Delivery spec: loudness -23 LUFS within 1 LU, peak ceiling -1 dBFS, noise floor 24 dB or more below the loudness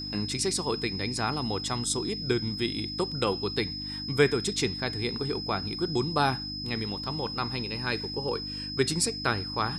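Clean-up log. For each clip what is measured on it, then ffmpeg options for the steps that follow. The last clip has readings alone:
hum 50 Hz; harmonics up to 300 Hz; hum level -38 dBFS; steady tone 5100 Hz; tone level -35 dBFS; loudness -29.0 LUFS; peak -9.0 dBFS; loudness target -23.0 LUFS
-> -af "bandreject=f=50:t=h:w=4,bandreject=f=100:t=h:w=4,bandreject=f=150:t=h:w=4,bandreject=f=200:t=h:w=4,bandreject=f=250:t=h:w=4,bandreject=f=300:t=h:w=4"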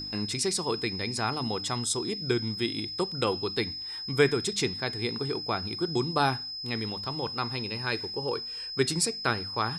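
hum none; steady tone 5100 Hz; tone level -35 dBFS
-> -af "bandreject=f=5.1k:w=30"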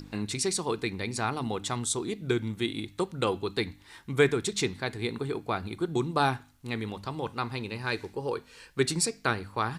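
steady tone none; loudness -30.5 LUFS; peak -9.5 dBFS; loudness target -23.0 LUFS
-> -af "volume=7.5dB"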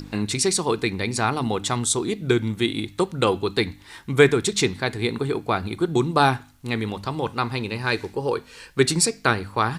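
loudness -23.0 LUFS; peak -2.0 dBFS; noise floor -49 dBFS

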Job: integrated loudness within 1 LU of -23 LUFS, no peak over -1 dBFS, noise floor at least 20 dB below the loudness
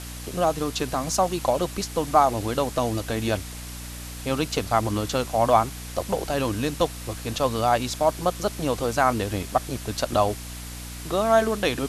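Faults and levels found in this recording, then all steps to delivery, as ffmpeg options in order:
hum 60 Hz; harmonics up to 300 Hz; hum level -36 dBFS; noise floor -37 dBFS; noise floor target -45 dBFS; loudness -24.5 LUFS; peak -5.0 dBFS; loudness target -23.0 LUFS
-> -af "bandreject=f=60:t=h:w=6,bandreject=f=120:t=h:w=6,bandreject=f=180:t=h:w=6,bandreject=f=240:t=h:w=6,bandreject=f=300:t=h:w=6"
-af "afftdn=nr=8:nf=-37"
-af "volume=1.5dB"

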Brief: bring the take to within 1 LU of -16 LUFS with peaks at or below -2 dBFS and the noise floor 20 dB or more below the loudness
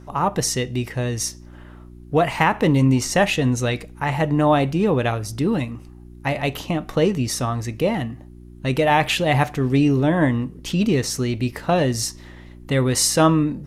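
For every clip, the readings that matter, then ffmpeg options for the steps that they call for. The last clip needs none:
hum 60 Hz; harmonics up to 360 Hz; hum level -42 dBFS; loudness -20.5 LUFS; peak -4.5 dBFS; loudness target -16.0 LUFS
-> -af "bandreject=f=60:t=h:w=4,bandreject=f=120:t=h:w=4,bandreject=f=180:t=h:w=4,bandreject=f=240:t=h:w=4,bandreject=f=300:t=h:w=4,bandreject=f=360:t=h:w=4"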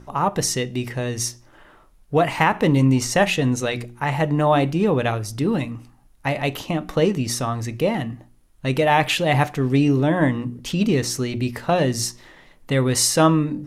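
hum none; loudness -21.0 LUFS; peak -4.0 dBFS; loudness target -16.0 LUFS
-> -af "volume=5dB,alimiter=limit=-2dB:level=0:latency=1"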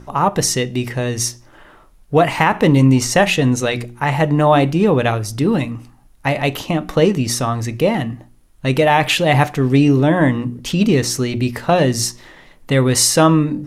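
loudness -16.0 LUFS; peak -2.0 dBFS; noise floor -48 dBFS

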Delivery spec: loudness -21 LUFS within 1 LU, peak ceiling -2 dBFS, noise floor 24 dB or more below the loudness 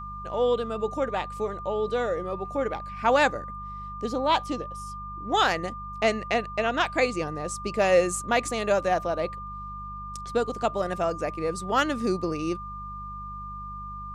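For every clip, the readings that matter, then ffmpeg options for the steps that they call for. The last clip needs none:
hum 50 Hz; harmonics up to 200 Hz; hum level -39 dBFS; steady tone 1200 Hz; tone level -36 dBFS; loudness -27.0 LUFS; peak -9.0 dBFS; loudness target -21.0 LUFS
-> -af "bandreject=f=50:t=h:w=4,bandreject=f=100:t=h:w=4,bandreject=f=150:t=h:w=4,bandreject=f=200:t=h:w=4"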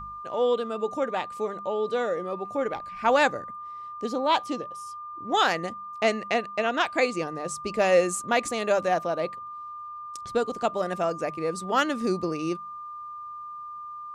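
hum none; steady tone 1200 Hz; tone level -36 dBFS
-> -af "bandreject=f=1.2k:w=30"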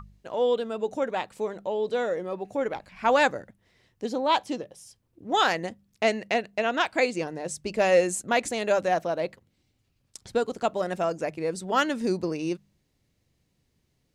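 steady tone none; loudness -27.0 LUFS; peak -9.0 dBFS; loudness target -21.0 LUFS
-> -af "volume=6dB"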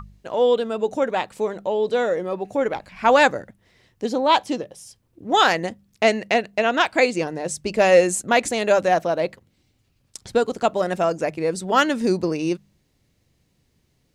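loudness -21.0 LUFS; peak -3.0 dBFS; noise floor -67 dBFS

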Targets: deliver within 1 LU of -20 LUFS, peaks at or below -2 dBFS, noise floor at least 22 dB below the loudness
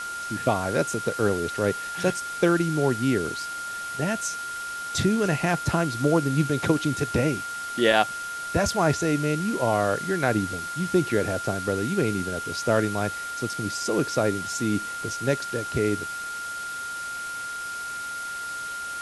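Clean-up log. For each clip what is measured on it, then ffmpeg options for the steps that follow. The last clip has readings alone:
steady tone 1400 Hz; tone level -31 dBFS; noise floor -33 dBFS; noise floor target -48 dBFS; loudness -26.0 LUFS; peak -4.5 dBFS; loudness target -20.0 LUFS
-> -af "bandreject=f=1.4k:w=30"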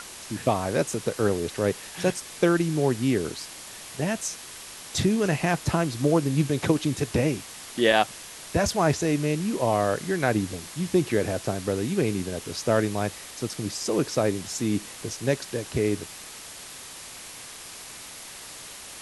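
steady tone none; noise floor -42 dBFS; noise floor target -48 dBFS
-> -af "afftdn=nr=6:nf=-42"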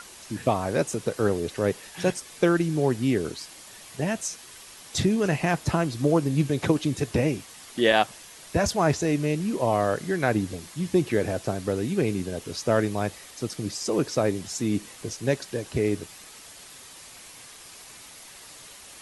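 noise floor -46 dBFS; noise floor target -48 dBFS
-> -af "afftdn=nr=6:nf=-46"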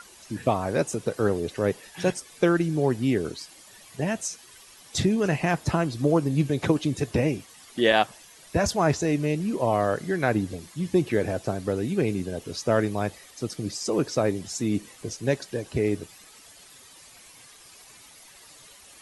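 noise floor -51 dBFS; loudness -26.0 LUFS; peak -5.5 dBFS; loudness target -20.0 LUFS
-> -af "volume=6dB,alimiter=limit=-2dB:level=0:latency=1"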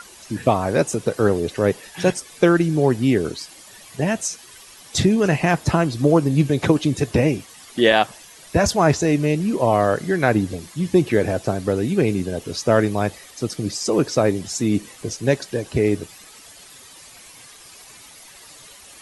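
loudness -20.5 LUFS; peak -2.0 dBFS; noise floor -45 dBFS

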